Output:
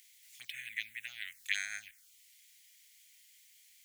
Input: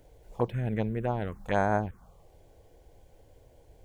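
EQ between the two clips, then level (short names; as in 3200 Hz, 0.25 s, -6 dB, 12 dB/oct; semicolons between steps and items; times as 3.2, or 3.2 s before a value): elliptic high-pass 2000 Hz, stop band 50 dB; high shelf 5900 Hz +6.5 dB; +8.5 dB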